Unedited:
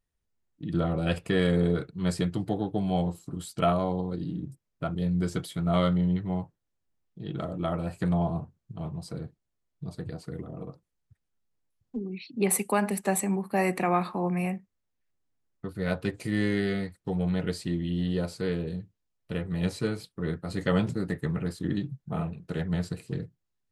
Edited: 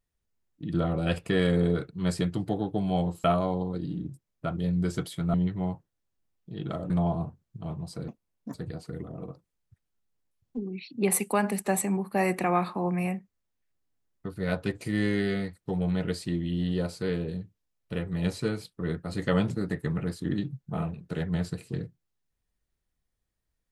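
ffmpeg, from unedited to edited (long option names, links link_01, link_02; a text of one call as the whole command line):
ffmpeg -i in.wav -filter_complex "[0:a]asplit=6[link_01][link_02][link_03][link_04][link_05][link_06];[link_01]atrim=end=3.242[link_07];[link_02]atrim=start=3.618:end=5.722[link_08];[link_03]atrim=start=6.028:end=7.592[link_09];[link_04]atrim=start=8.048:end=9.234[link_10];[link_05]atrim=start=9.23:end=9.93,asetpts=PTS-STARTPTS,asetrate=67032,aresample=44100,atrim=end_sample=20309,asetpts=PTS-STARTPTS[link_11];[link_06]atrim=start=9.926[link_12];[link_07][link_08]acrossfade=duration=0.004:curve1=hsin:curve2=hsin[link_13];[link_13][link_09]acrossfade=duration=0.004:curve1=hsin:curve2=hsin[link_14];[link_14][link_10]acrossfade=duration=0.004:curve1=hsin:curve2=hsin[link_15];[link_15][link_11]acrossfade=duration=0.004:curve1=hsin:curve2=hsin[link_16];[link_16][link_12]acrossfade=duration=0.004:curve1=hsin:curve2=hsin" out.wav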